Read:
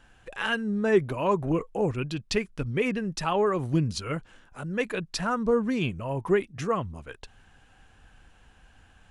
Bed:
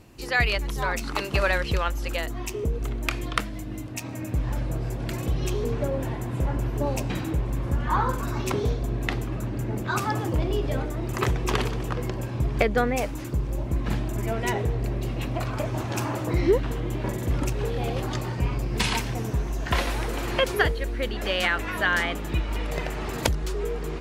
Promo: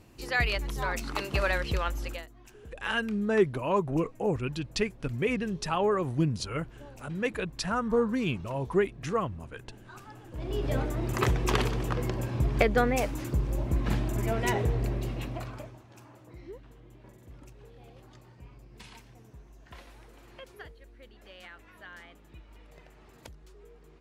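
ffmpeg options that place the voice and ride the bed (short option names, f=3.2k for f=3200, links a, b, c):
-filter_complex "[0:a]adelay=2450,volume=-2dB[a];[1:a]volume=16dB,afade=t=out:st=2.02:d=0.26:silence=0.133352,afade=t=in:st=10.31:d=0.44:silence=0.0944061,afade=t=out:st=14.78:d=1.01:silence=0.0707946[b];[a][b]amix=inputs=2:normalize=0"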